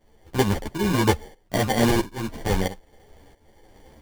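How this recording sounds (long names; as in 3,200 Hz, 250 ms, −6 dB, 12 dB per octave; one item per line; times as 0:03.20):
tremolo saw up 1.5 Hz, depth 80%
aliases and images of a low sample rate 1,300 Hz, jitter 0%
a shimmering, thickened sound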